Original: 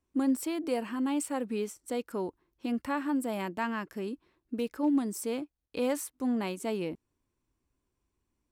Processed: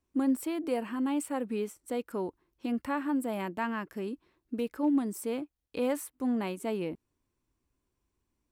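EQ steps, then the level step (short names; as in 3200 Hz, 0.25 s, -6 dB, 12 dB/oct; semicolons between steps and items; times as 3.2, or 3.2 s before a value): dynamic EQ 5700 Hz, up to -7 dB, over -57 dBFS, Q 1; 0.0 dB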